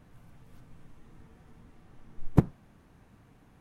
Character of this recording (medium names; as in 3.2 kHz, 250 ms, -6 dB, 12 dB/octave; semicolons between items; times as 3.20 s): noise floor -60 dBFS; spectral tilt -8.5 dB/octave